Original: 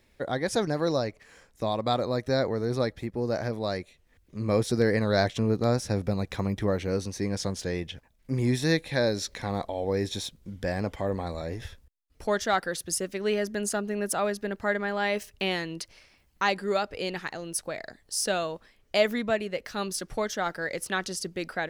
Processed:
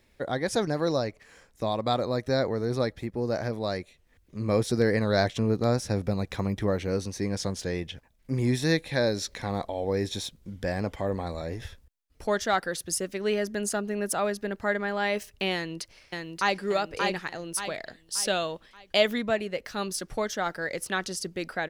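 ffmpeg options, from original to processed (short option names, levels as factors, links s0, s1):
-filter_complex "[0:a]asplit=2[s0][s1];[s1]afade=t=in:st=15.54:d=0.01,afade=t=out:st=16.6:d=0.01,aecho=0:1:580|1160|1740|2320|2900:0.668344|0.267338|0.106935|0.042774|0.0171096[s2];[s0][s2]amix=inputs=2:normalize=0,asettb=1/sr,asplit=3[s3][s4][s5];[s3]atrim=end=17.564[s6];[s4]atrim=start=17.56:end=19.18,asetpts=PTS-STARTPTS,afade=t=in:d=0.004:c=qsin,afade=t=out:st=1.616:d=0.004:c=qsin,equalizer=f=3300:t=o:w=0.46:g=7.5[s7];[s5]atrim=start=19.176[s8];[s6][s7]acrossfade=d=0.004:c1=hsin:c2=qsin[s9];[s9][s8]acrossfade=d=0.004:c1=qsin:c2=hsin"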